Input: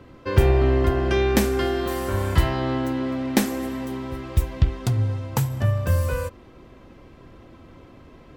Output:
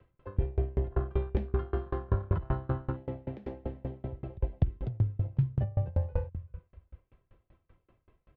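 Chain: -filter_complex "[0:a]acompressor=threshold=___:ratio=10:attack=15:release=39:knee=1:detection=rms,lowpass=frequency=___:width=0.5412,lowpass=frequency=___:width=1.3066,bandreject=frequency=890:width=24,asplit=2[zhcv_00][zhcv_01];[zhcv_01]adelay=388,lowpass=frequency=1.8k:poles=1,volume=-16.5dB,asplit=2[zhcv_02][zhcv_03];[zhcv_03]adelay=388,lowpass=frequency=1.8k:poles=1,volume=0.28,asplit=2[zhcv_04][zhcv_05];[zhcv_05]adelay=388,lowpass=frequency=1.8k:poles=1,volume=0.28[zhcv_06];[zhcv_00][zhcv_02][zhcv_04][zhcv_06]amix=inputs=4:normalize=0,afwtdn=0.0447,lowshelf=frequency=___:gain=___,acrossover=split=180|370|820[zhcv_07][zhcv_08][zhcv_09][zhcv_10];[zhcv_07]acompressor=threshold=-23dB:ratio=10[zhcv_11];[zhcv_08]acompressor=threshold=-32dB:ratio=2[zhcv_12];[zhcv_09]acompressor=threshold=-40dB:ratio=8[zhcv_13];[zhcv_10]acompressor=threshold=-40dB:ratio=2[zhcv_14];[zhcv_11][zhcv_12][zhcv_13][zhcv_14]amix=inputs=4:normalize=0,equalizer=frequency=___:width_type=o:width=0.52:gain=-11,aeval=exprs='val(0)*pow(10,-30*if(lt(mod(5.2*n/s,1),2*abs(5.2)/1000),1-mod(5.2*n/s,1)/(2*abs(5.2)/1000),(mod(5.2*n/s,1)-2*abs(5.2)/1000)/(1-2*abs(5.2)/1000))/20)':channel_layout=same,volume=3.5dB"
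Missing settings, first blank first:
-22dB, 3.3k, 3.3k, 110, 8.5, 260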